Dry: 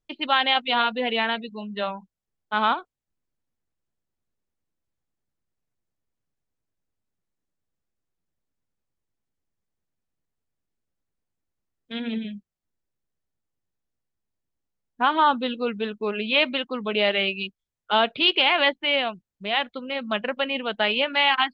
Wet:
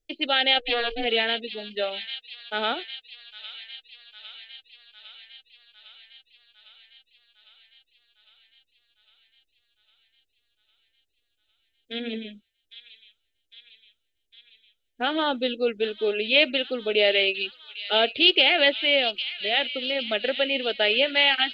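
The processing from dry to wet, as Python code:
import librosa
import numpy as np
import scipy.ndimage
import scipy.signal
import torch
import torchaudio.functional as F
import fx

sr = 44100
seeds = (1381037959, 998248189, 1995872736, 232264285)

y = fx.ring_mod(x, sr, carrier_hz=240.0, at=(0.58, 1.04), fade=0.02)
y = fx.fixed_phaser(y, sr, hz=430.0, stages=4)
y = fx.echo_wet_highpass(y, sr, ms=805, feedback_pct=69, hz=3300.0, wet_db=-7)
y = y * librosa.db_to_amplitude(3.5)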